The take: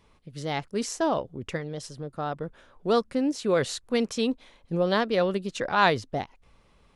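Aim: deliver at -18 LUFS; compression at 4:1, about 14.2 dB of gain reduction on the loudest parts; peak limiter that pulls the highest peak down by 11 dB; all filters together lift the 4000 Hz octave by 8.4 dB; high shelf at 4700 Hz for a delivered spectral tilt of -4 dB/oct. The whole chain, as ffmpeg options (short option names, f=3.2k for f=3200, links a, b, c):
-af "equalizer=f=4k:t=o:g=6.5,highshelf=f=4.7k:g=7.5,acompressor=threshold=-32dB:ratio=4,volume=21.5dB,alimiter=limit=-8dB:level=0:latency=1"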